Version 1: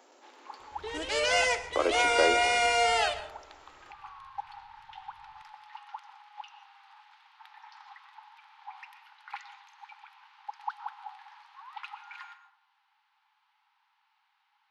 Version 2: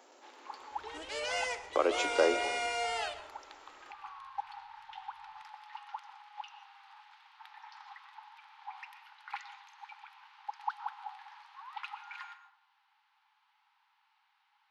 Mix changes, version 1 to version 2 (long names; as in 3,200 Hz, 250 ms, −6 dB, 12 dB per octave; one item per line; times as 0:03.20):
second sound −9.0 dB
master: add low-shelf EQ 220 Hz −4 dB